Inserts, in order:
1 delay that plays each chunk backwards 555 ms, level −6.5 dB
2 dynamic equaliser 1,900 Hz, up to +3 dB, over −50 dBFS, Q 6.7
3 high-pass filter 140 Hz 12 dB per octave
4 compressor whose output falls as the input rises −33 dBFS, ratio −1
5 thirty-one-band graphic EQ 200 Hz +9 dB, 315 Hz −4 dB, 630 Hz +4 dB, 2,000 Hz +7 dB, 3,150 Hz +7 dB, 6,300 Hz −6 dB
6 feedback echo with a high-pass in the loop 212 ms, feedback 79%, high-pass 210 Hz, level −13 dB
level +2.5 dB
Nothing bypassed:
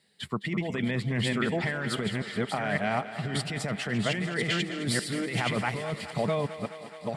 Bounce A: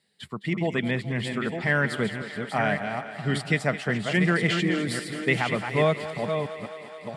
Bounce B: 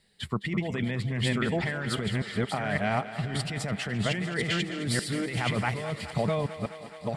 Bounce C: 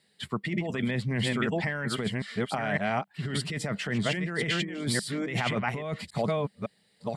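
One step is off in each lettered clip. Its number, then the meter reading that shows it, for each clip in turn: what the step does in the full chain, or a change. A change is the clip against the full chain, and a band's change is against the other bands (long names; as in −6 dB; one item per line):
4, change in momentary loudness spread +3 LU
3, 125 Hz band +2.5 dB
6, echo-to-direct ratio −9.0 dB to none audible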